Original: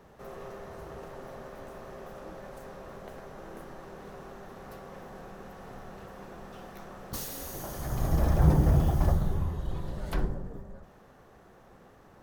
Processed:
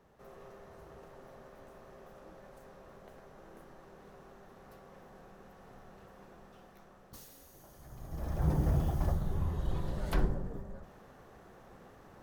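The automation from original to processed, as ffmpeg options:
ffmpeg -i in.wav -af "volume=8.5dB,afade=type=out:start_time=6.24:duration=1.24:silence=0.375837,afade=type=in:start_time=8.08:duration=0.56:silence=0.266073,afade=type=in:start_time=9.24:duration=0.41:silence=0.473151" out.wav

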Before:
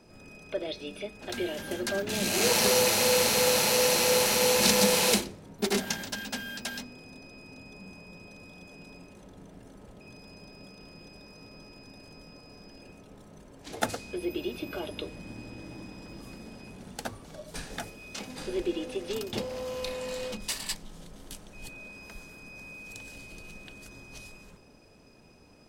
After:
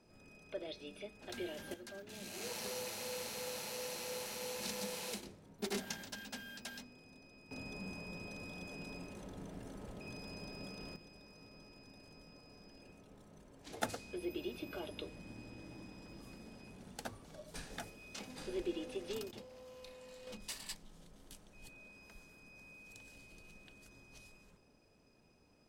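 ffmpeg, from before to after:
ffmpeg -i in.wav -af "asetnsamples=nb_out_samples=441:pad=0,asendcmd='1.74 volume volume -19.5dB;5.23 volume volume -11.5dB;7.51 volume volume 1dB;10.96 volume volume -8.5dB;19.31 volume volume -19dB;20.27 volume volume -12dB',volume=-10.5dB" out.wav

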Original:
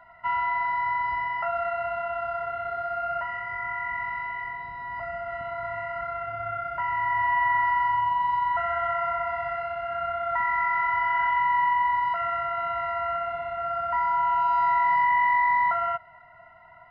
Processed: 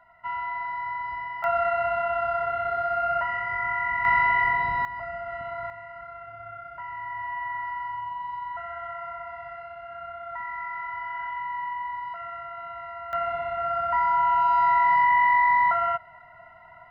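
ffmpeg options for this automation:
ffmpeg -i in.wav -af "asetnsamples=nb_out_samples=441:pad=0,asendcmd='1.44 volume volume 4dB;4.05 volume volume 11.5dB;4.85 volume volume -1dB;5.7 volume volume -9dB;13.13 volume volume 2dB',volume=-5dB" out.wav

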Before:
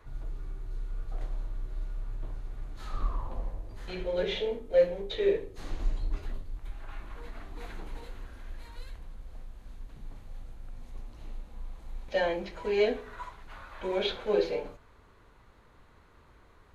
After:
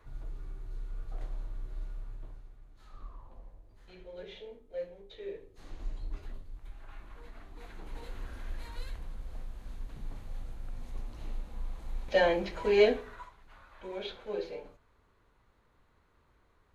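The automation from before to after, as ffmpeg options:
ffmpeg -i in.wav -af "volume=15dB,afade=type=out:start_time=1.85:duration=0.74:silence=0.251189,afade=type=in:start_time=5.28:duration=0.82:silence=0.354813,afade=type=in:start_time=7.74:duration=0.58:silence=0.334965,afade=type=out:start_time=12.83:duration=0.46:silence=0.237137" out.wav

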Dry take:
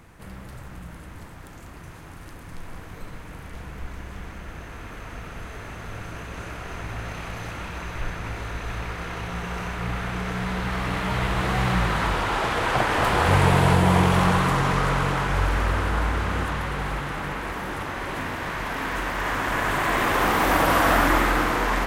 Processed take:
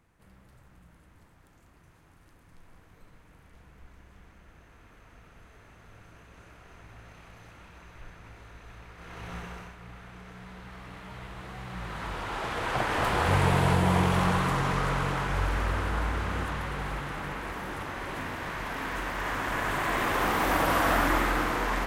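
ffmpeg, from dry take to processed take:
ffmpeg -i in.wav -af "volume=5dB,afade=type=in:start_time=8.95:duration=0.39:silence=0.334965,afade=type=out:start_time=9.34:duration=0.42:silence=0.298538,afade=type=in:start_time=11.68:duration=1.29:silence=0.237137" out.wav

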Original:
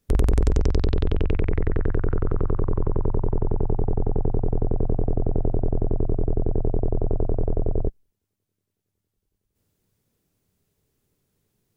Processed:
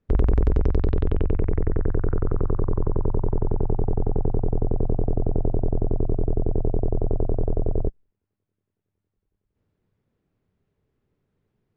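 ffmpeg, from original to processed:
ffmpeg -i in.wav -af "asetnsamples=nb_out_samples=441:pad=0,asendcmd='1.22 lowpass f 1300;2.03 lowpass f 1600;3.21 lowpass f 2200;4.46 lowpass f 1500;7.68 lowpass f 2100',lowpass=1900" out.wav

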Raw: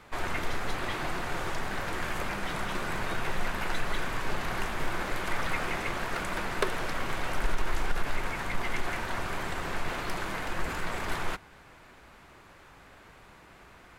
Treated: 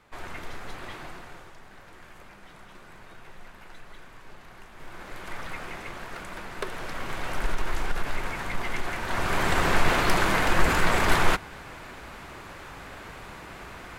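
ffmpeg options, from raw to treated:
ffmpeg -i in.wav -af "volume=20.5dB,afade=type=out:start_time=0.92:duration=0.59:silence=0.334965,afade=type=in:start_time=4.7:duration=0.63:silence=0.316228,afade=type=in:start_time=6.53:duration=0.9:silence=0.446684,afade=type=in:start_time=9:duration=0.59:silence=0.316228" out.wav

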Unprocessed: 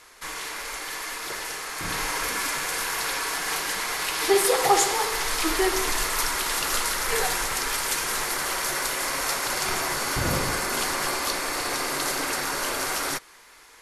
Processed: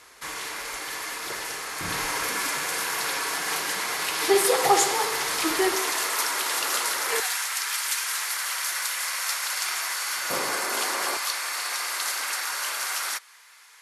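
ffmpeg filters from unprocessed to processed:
ffmpeg -i in.wav -af "asetnsamples=nb_out_samples=441:pad=0,asendcmd='2.23 highpass f 110;5.75 highpass f 360;7.2 highpass f 1300;10.3 highpass f 380;11.17 highpass f 1100',highpass=51" out.wav

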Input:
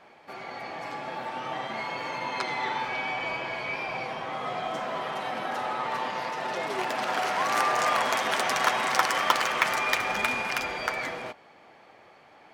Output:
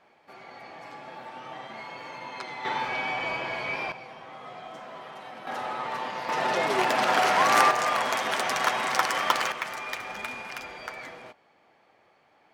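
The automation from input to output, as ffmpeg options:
ffmpeg -i in.wav -af "asetnsamples=nb_out_samples=441:pad=0,asendcmd='2.65 volume volume 1dB;3.92 volume volume -10dB;5.47 volume volume -2dB;6.29 volume volume 5.5dB;7.71 volume volume -1dB;9.52 volume volume -8.5dB',volume=-7dB" out.wav

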